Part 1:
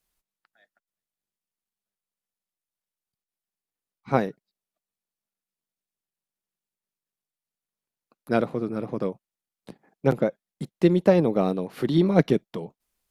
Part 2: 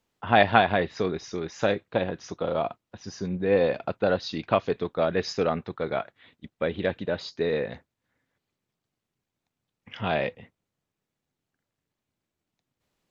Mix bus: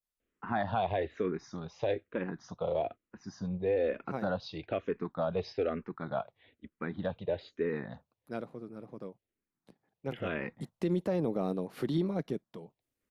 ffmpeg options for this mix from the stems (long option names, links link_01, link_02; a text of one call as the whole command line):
ffmpeg -i stem1.wav -i stem2.wav -filter_complex "[0:a]adynamicequalizer=threshold=0.00501:dfrequency=2700:dqfactor=1:tfrequency=2700:tqfactor=1:attack=5:release=100:ratio=0.375:range=3:mode=cutabove:tftype=bell,volume=-6dB,afade=type=in:start_time=10.37:duration=0.35:silence=0.316228,afade=type=out:start_time=11.85:duration=0.32:silence=0.446684[link_01];[1:a]highshelf=frequency=2900:gain=-11,asplit=2[link_02][link_03];[link_03]afreqshift=-1.1[link_04];[link_02][link_04]amix=inputs=2:normalize=1,adelay=200,volume=-2.5dB[link_05];[link_01][link_05]amix=inputs=2:normalize=0,alimiter=limit=-21.5dB:level=0:latency=1:release=61" out.wav